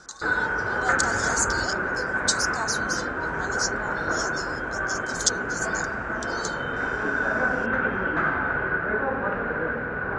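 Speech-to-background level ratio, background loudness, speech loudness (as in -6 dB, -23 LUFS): -4.0 dB, -26.0 LUFS, -30.0 LUFS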